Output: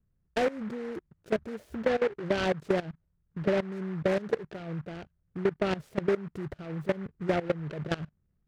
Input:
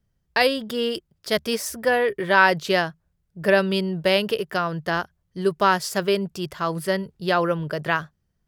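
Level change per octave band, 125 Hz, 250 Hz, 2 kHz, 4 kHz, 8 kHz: −5.0 dB, −5.5 dB, −15.0 dB, −16.0 dB, below −15 dB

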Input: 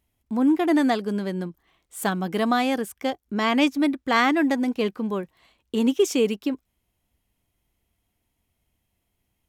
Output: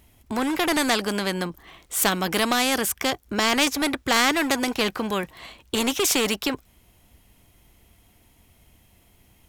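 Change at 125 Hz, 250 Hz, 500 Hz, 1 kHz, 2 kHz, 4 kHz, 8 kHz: can't be measured, −4.0 dB, −1.5 dB, +0.5 dB, +4.0 dB, +8.5 dB, +12.5 dB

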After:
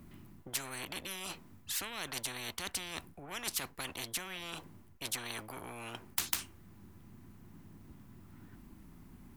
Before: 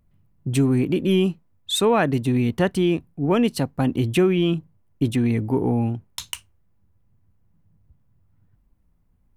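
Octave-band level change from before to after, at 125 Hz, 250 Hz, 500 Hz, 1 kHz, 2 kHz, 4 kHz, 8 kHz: −28.0, −29.5, −27.0, −16.0, −9.5, −9.0, −2.5 decibels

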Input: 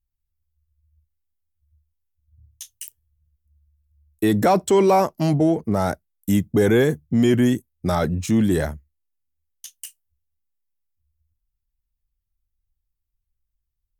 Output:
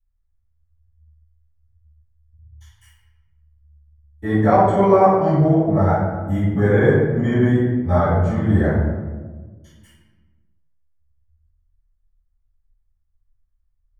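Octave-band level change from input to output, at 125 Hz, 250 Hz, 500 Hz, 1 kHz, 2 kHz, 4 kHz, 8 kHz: +6.5 dB, +1.0 dB, +3.0 dB, +4.5 dB, +3.0 dB, can't be measured, below −15 dB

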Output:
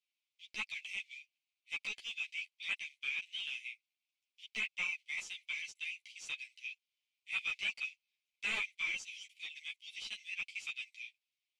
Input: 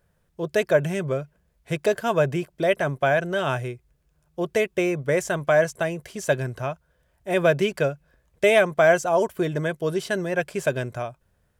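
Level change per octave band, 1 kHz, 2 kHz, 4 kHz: −29.5, −11.0, −5.0 decibels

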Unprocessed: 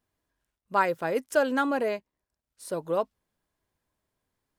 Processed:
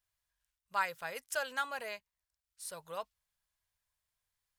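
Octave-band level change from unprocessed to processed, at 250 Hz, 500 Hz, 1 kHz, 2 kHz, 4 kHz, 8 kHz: −27.0, −16.5, −9.5, −5.5, −2.0, −0.5 decibels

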